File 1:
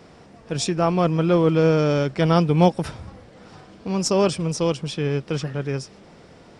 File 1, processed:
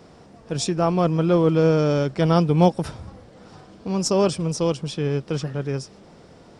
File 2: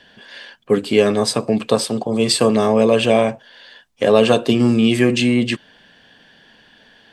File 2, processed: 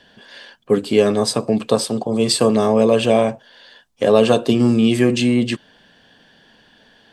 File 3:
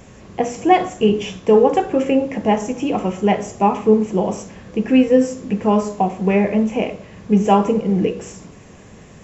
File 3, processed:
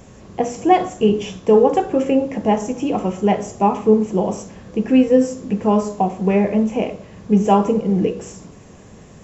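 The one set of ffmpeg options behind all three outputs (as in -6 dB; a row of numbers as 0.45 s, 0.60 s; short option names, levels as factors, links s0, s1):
-af "equalizer=f=2200:t=o:w=1.2:g=-4.5"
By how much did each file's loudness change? 0.0 LU, -0.5 LU, 0.0 LU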